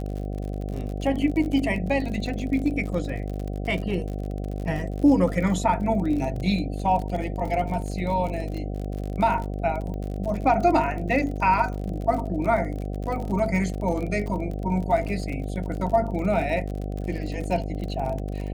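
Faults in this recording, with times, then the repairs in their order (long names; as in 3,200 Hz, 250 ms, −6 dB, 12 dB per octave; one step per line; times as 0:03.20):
mains buzz 50 Hz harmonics 15 −30 dBFS
surface crackle 43 per second −31 dBFS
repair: click removal
hum removal 50 Hz, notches 15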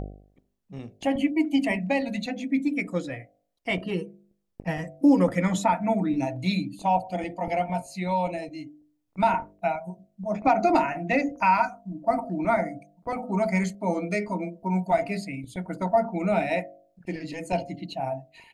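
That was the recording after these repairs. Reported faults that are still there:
none of them is left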